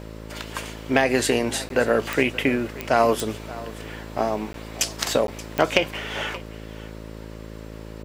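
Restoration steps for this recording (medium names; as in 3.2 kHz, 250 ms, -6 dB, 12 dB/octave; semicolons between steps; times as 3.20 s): de-click; de-hum 54.4 Hz, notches 11; interpolate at 1.69/4.53/5.27 s, 12 ms; inverse comb 578 ms -18 dB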